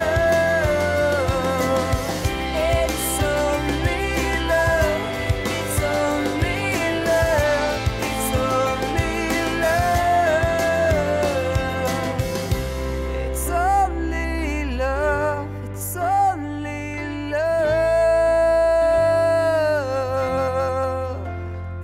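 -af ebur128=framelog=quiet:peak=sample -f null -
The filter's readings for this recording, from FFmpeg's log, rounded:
Integrated loudness:
  I:         -20.9 LUFS
  Threshold: -30.9 LUFS
Loudness range:
  LRA:         4.3 LU
  Threshold: -40.8 LUFS
  LRA low:   -23.0 LUFS
  LRA high:  -18.7 LUFS
Sample peak:
  Peak:       -9.0 dBFS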